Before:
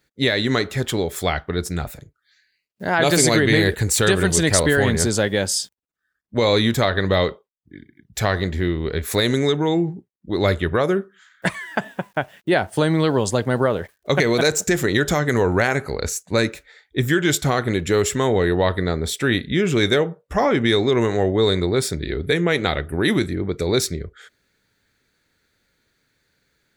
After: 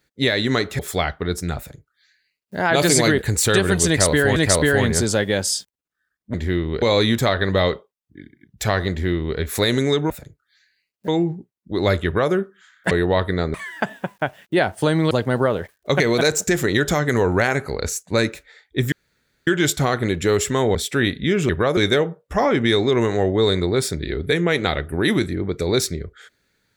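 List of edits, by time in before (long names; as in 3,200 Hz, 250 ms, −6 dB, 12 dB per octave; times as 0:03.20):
0:00.79–0:01.07: remove
0:01.86–0:02.84: duplicate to 0:09.66
0:03.46–0:03.71: remove
0:04.40–0:04.89: repeat, 2 plays
0:08.46–0:08.94: duplicate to 0:06.38
0:10.63–0:10.91: duplicate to 0:19.77
0:13.06–0:13.31: remove
0:17.12: splice in room tone 0.55 s
0:18.40–0:19.03: move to 0:11.49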